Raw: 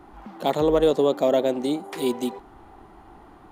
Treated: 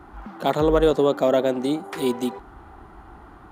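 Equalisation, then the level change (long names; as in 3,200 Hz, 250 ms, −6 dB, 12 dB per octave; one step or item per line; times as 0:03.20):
high-pass filter 40 Hz
low-shelf EQ 100 Hz +12 dB
parametric band 1,400 Hz +7.5 dB 0.71 octaves
0.0 dB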